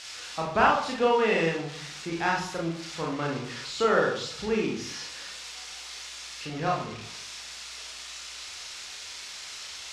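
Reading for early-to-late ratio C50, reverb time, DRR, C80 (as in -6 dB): 5.0 dB, 0.60 s, -2.5 dB, 9.0 dB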